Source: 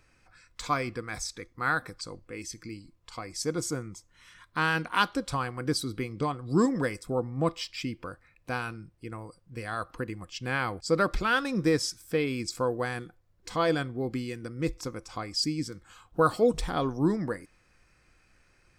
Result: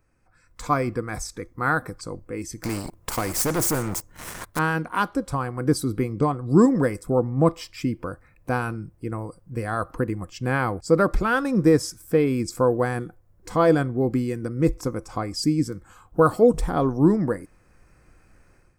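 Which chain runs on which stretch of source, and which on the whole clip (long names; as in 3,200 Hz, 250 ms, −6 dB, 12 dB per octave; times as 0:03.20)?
0:02.63–0:04.59: leveller curve on the samples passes 3 + every bin compressed towards the loudest bin 2 to 1
whole clip: automatic gain control gain up to 12.5 dB; parametric band 3,600 Hz −14.5 dB 2 octaves; level −2 dB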